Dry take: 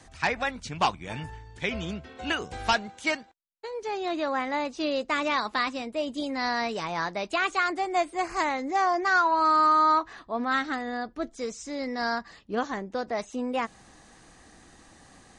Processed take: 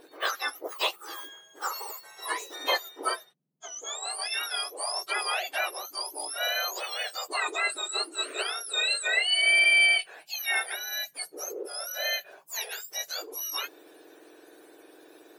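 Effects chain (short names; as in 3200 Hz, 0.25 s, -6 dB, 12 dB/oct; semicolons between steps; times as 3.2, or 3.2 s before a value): spectrum mirrored in octaves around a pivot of 1700 Hz; 11.12–11.52 three-band squash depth 40%; gain +1 dB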